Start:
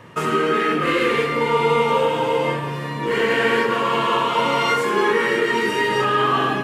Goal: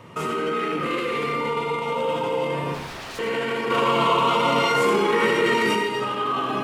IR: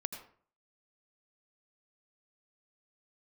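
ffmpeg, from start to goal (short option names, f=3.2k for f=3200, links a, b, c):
-filter_complex "[0:a]bandreject=f=1.7k:w=5.7,alimiter=limit=-18dB:level=0:latency=1:release=15,asettb=1/sr,asplit=3[a][b][c];[a]atrim=end=2.744[d];[b]atrim=start=2.74:end=3.19,asetpts=PTS-STARTPTS,afade=t=in:d=0.004:c=qsin,afade=t=out:st=0.446:d=0.004:c=qsin,aeval=exprs='0.0282*(abs(mod(val(0)/0.0282+3,4)-2)-1)':c=same[e];[c]atrim=start=3.186[f];[d][e]acrossfade=d=0.004:c1=hsin:c2=qsin[g];[g][f]acrossfade=d=0.004:c1=qsin:c2=hsin,asettb=1/sr,asplit=3[h][i][j];[h]atrim=end=3.704[k];[i]atrim=start=3.7:end=5.75,asetpts=PTS-STARTPTS,afade=t=in:d=0.004:c=qsin,afade=t=out:st=2.046:d=0.004:c=qsin,acontrast=50[l];[j]atrim=start=5.746[m];[k][l]acrossfade=d=0.004:c1=hsin:c2=qsin[n];[n][m]acrossfade=d=0.004:c1=qsin:c2=hsin[o];[1:a]atrim=start_sample=2205[p];[o][p]afir=irnorm=-1:irlink=0"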